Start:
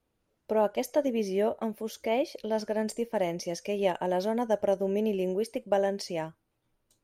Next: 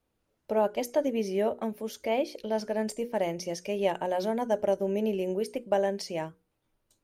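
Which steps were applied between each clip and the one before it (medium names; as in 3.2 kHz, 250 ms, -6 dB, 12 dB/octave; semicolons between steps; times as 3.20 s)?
hum notches 60/120/180/240/300/360/420/480 Hz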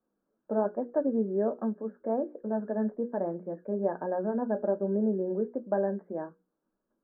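resonant low shelf 150 Hz -10 dB, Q 3; flange 1.2 Hz, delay 5.2 ms, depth 4.2 ms, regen -64%; rippled Chebyshev low-pass 1.7 kHz, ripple 3 dB; trim +2 dB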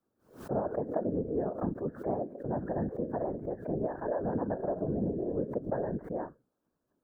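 compression, threshold -28 dBFS, peak gain reduction 7 dB; whisper effect; swell ahead of each attack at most 140 dB/s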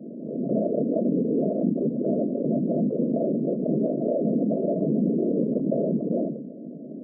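small resonant body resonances 230 Hz, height 10 dB, ringing for 30 ms; FFT band-pass 130–690 Hz; level flattener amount 70%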